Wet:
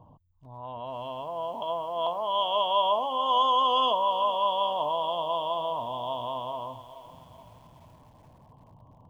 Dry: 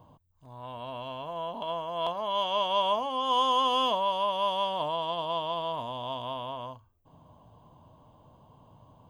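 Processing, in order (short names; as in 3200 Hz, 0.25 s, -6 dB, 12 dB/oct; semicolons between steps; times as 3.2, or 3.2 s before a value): formant sharpening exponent 1.5; lo-fi delay 0.425 s, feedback 55%, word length 9-bit, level -14 dB; gain +2 dB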